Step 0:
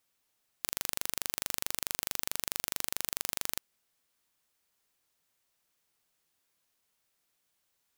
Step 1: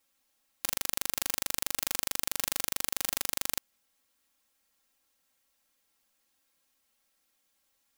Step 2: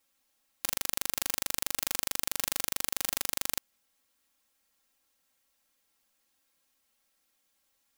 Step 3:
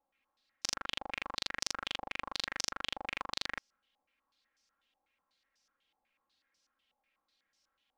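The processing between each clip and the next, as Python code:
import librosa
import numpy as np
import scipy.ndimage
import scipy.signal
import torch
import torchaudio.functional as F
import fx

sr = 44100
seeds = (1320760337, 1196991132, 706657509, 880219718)

y1 = x + 0.95 * np.pad(x, (int(3.7 * sr / 1000.0), 0))[:len(x)]
y2 = y1
y3 = fx.filter_held_lowpass(y2, sr, hz=8.1, low_hz=810.0, high_hz=5500.0)
y3 = y3 * 10.0 ** (-4.5 / 20.0)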